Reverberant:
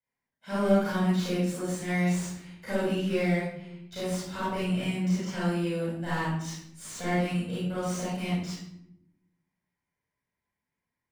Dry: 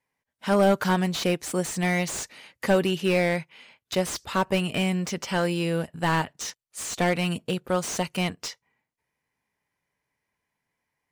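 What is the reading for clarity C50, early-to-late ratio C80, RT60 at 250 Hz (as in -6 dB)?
-3.5 dB, 3.0 dB, 1.4 s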